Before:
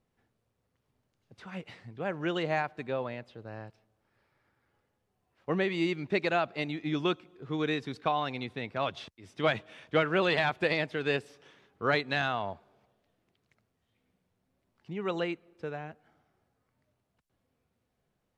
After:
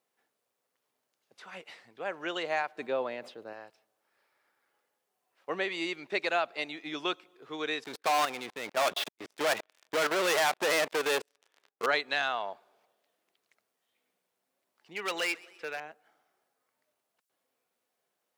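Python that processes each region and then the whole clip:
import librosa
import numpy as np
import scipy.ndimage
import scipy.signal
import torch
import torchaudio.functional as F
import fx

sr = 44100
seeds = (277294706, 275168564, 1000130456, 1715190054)

y = fx.chain(x, sr, fx.peak_eq(hz=230.0, db=8.0, octaves=2.7),
    fx.sustainer(db_per_s=150.0), at=(2.76, 3.53))
y = fx.chain(y, sr, fx.lowpass(hz=2000.0, slope=6),
    fx.level_steps(step_db=17),
    fx.leveller(passes=5), at=(7.84, 11.86))
y = fx.chain(y, sr, fx.peak_eq(hz=2300.0, db=12.0, octaves=1.4),
    fx.overload_stage(gain_db=26.5),
    fx.echo_warbled(ms=127, feedback_pct=55, rate_hz=2.8, cents=143, wet_db=-23), at=(14.95, 15.8))
y = scipy.signal.sosfilt(scipy.signal.butter(2, 480.0, 'highpass', fs=sr, output='sos'), y)
y = fx.high_shelf(y, sr, hz=6200.0, db=8.5)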